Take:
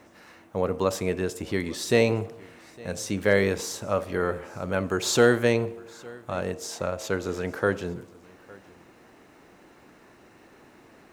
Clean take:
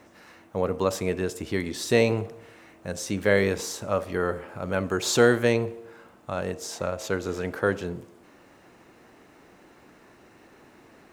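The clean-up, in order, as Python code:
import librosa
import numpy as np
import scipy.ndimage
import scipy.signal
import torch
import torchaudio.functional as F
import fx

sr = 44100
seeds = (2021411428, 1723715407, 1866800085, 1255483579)

y = fx.fix_declip(x, sr, threshold_db=-8.0)
y = fx.fix_echo_inverse(y, sr, delay_ms=859, level_db=-23.5)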